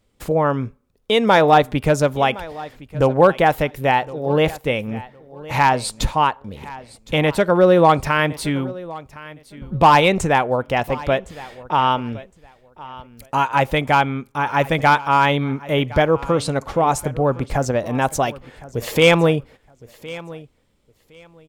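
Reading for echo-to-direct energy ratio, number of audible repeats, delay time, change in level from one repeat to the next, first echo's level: -19.0 dB, 2, 1.063 s, -14.0 dB, -19.0 dB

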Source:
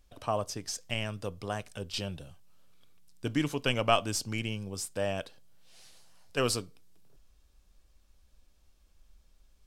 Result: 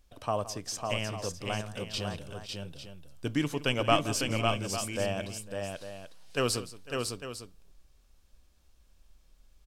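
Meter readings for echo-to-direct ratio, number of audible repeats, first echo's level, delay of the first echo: -3.5 dB, 4, -16.5 dB, 0.169 s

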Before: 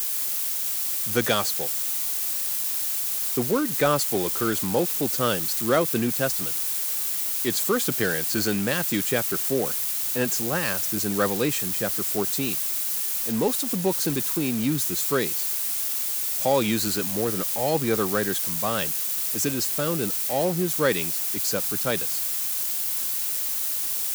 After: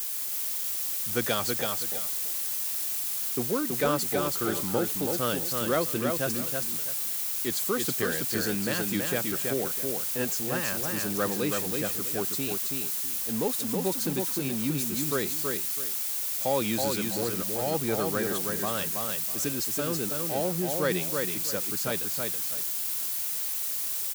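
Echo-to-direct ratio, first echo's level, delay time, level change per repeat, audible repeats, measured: -3.5 dB, -4.0 dB, 0.326 s, -12.0 dB, 2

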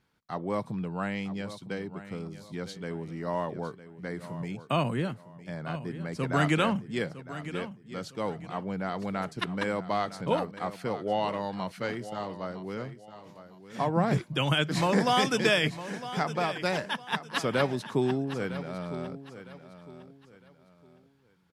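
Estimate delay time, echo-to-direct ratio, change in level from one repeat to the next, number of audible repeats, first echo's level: 0.957 s, -13.0 dB, -10.0 dB, 3, -13.5 dB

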